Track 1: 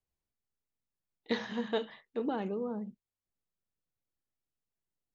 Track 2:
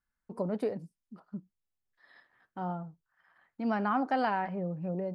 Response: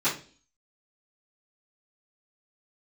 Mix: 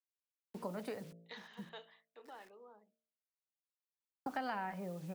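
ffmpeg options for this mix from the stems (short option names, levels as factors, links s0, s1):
-filter_complex "[0:a]highpass=750,volume=0.237,asplit=2[s0][s1];[1:a]acrusher=bits=9:mix=0:aa=0.000001,adelay=250,volume=1.06,asplit=3[s2][s3][s4];[s2]atrim=end=2.58,asetpts=PTS-STARTPTS,afade=t=out:st=2.576:d=0.004:c=hsin[s5];[s3]atrim=start=2.58:end=4.26,asetpts=PTS-STARTPTS,volume=0[s6];[s4]atrim=start=4.26,asetpts=PTS-STARTPTS,afade=t=in:d=0.004:c=hsin[s7];[s5][s6][s7]concat=n=3:v=0:a=1[s8];[s1]apad=whole_len=238083[s9];[s8][s9]sidechaincompress=threshold=0.00158:ratio=8:attack=9.8:release=288[s10];[s0][s10]amix=inputs=2:normalize=0,bandreject=f=56.38:t=h:w=4,bandreject=f=112.76:t=h:w=4,bandreject=f=169.14:t=h:w=4,bandreject=f=225.52:t=h:w=4,bandreject=f=281.9:t=h:w=4,bandreject=f=338.28:t=h:w=4,bandreject=f=394.66:t=h:w=4,bandreject=f=451.04:t=h:w=4,bandreject=f=507.42:t=h:w=4,bandreject=f=563.8:t=h:w=4,bandreject=f=620.18:t=h:w=4,bandreject=f=676.56:t=h:w=4,acrossover=split=170|890[s11][s12][s13];[s11]acompressor=threshold=0.002:ratio=4[s14];[s12]acompressor=threshold=0.00501:ratio=4[s15];[s13]acompressor=threshold=0.00891:ratio=4[s16];[s14][s15][s16]amix=inputs=3:normalize=0"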